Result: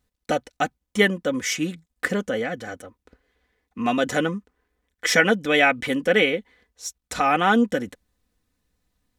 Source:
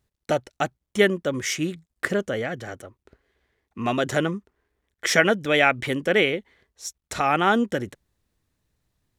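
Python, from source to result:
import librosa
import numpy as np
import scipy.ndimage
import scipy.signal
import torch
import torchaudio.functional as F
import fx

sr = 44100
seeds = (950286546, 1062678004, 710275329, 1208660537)

y = x + 0.58 * np.pad(x, (int(4.0 * sr / 1000.0), 0))[:len(x)]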